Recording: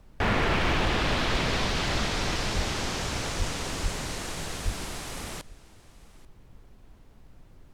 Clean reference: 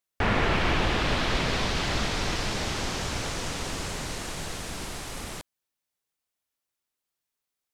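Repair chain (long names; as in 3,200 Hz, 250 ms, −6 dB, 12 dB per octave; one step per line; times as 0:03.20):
clipped peaks rebuilt −18.5 dBFS
high-pass at the plosives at 0:02.55/0:03.38/0:03.82/0:04.64
noise reduction from a noise print 30 dB
echo removal 838 ms −21.5 dB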